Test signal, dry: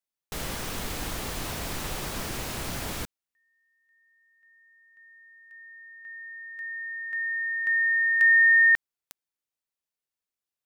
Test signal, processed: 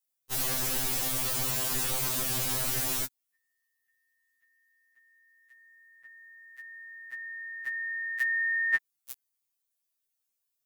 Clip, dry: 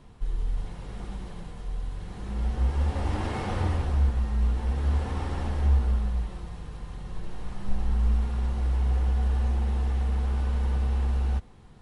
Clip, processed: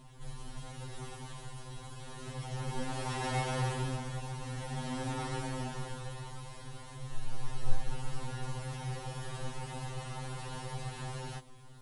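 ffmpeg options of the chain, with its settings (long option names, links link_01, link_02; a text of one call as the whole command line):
ffmpeg -i in.wav -af "crystalizer=i=2:c=0,afftfilt=real='re*2.45*eq(mod(b,6),0)':imag='im*2.45*eq(mod(b,6),0)':win_size=2048:overlap=0.75" out.wav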